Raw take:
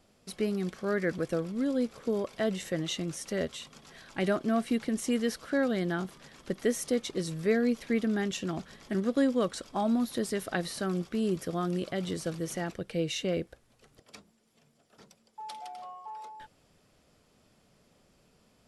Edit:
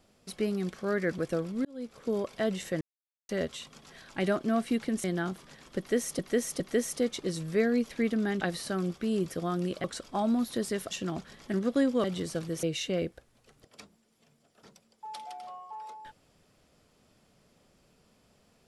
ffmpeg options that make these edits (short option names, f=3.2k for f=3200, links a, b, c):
-filter_complex "[0:a]asplit=12[a][b][c][d][e][f][g][h][i][j][k][l];[a]atrim=end=1.65,asetpts=PTS-STARTPTS,afade=t=out:st=1.646:d=0.004:c=hsin[m];[b]atrim=start=1.65:end=2.81,asetpts=PTS-STARTPTS,afade=t=in:d=0.49,afade=t=out:st=1.156:d=0.004:c=hsin[n];[c]atrim=start=2.81:end=3.29,asetpts=PTS-STARTPTS,volume=0[o];[d]atrim=start=3.29:end=5.042,asetpts=PTS-STARTPTS,afade=t=in:d=0.004:c=hsin[p];[e]atrim=start=5.768:end=6.922[q];[f]atrim=start=6.508:end=6.922[r];[g]atrim=start=6.508:end=8.322[s];[h]atrim=start=10.518:end=11.952[t];[i]atrim=start=9.448:end=10.522[u];[j]atrim=start=8.318:end=9.452[v];[k]atrim=start=11.948:end=12.542[w];[l]atrim=start=12.978[x];[m][n][o][p]concat=n=4:v=0:a=1[y];[y][q]acrossfade=d=0.004:c1=hsin:c2=hsin[z];[z][r]acrossfade=d=0.004:c1=hsin:c2=hsin[aa];[aa][s]acrossfade=d=0.004:c1=hsin:c2=hsin[ab];[ab][t]acrossfade=d=0.004:c1=hsin:c2=hsin[ac];[ac][u]acrossfade=d=0.004:c1=hsin:c2=hsin[ad];[ad][v]acrossfade=d=0.004:c1=hsin:c2=hsin[ae];[ae][w]acrossfade=d=0.004:c1=hsin:c2=hsin[af];[af][x]acrossfade=d=0.004:c1=hsin:c2=hsin"